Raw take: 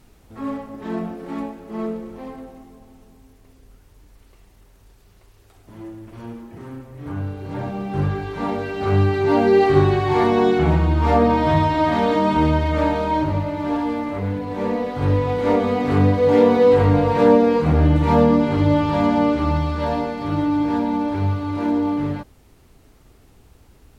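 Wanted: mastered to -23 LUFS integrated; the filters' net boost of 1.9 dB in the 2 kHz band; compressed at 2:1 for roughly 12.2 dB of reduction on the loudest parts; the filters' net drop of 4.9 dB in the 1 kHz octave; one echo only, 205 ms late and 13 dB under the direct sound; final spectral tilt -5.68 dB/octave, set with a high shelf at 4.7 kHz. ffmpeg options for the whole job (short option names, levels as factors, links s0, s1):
-af "equalizer=f=1000:t=o:g=-7,equalizer=f=2000:t=o:g=5,highshelf=f=4700:g=-3,acompressor=threshold=0.02:ratio=2,aecho=1:1:205:0.224,volume=2.37"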